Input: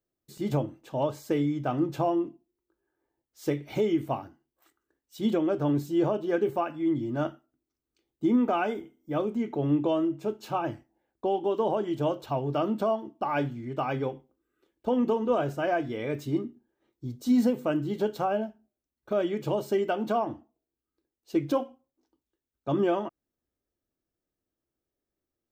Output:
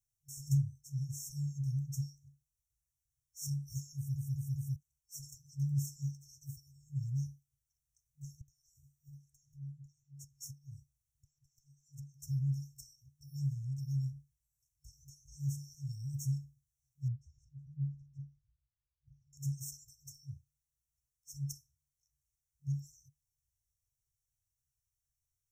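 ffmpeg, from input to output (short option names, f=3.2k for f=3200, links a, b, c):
-filter_complex "[0:a]asettb=1/sr,asplit=3[a][b][c];[a]atrim=end=8.414[d];[b]atrim=start=8.41:end=12.22,asetpts=PTS-STARTPTS,afade=t=in:d=0.004:c=qsin,afade=t=out:st=3.806:d=0.004:c=qsin,acompressor=threshold=-40dB:ratio=6:attack=3.2:release=140:knee=1:detection=peak[e];[c]atrim=start=12.216[f];[d][e]acrossfade=d=0.004:c1=hsin:c2=qsin[g];[g][f]acrossfade=d=0.004:c1=qsin:c2=hsin,asettb=1/sr,asplit=3[h][i][j];[h]atrim=end=17.084[k];[i]atrim=start=17.08:end=19.33,asetpts=PTS-STARTPTS,afade=t=in:d=0.004:c=qsin,afade=t=out:st=2.246:d=0.004:c=qsin,lowpass=f=940:t=q:w=4.9[l];[j]atrim=start=19.326[m];[k][l]acrossfade=d=0.004:c1=hsin:c2=qsin[n];[n][m]acrossfade=d=0.004:c1=qsin:c2=hsin,asplit=5[o][p][q][r][s];[o]atrim=end=4.162[t];[p]atrim=start=3.958:end=4.162[u];[q]atrim=start=3.958:end=4.162[v];[r]atrim=start=3.958:end=4.162[w];[s]atrim=start=4.758[x];[t][u]acrossfade=d=0.004:c1=hsin:c2=hsin[y];[y][v]acrossfade=d=0.004:c1=hsin:c2=hsin[z];[z][w]acrossfade=d=0.004:c1=hsin:c2=hsin[aa];[aa][x]acrossfade=d=0.004:c1=hsin:c2=hsin,tiltshelf=f=970:g=-3,afftfilt=real='re*(1-between(b*sr/4096,140,5400))':imag='im*(1-between(b*sr/4096,140,5400))':win_size=4096:overlap=0.75,highshelf=f=12k:g=-10,volume=6dB"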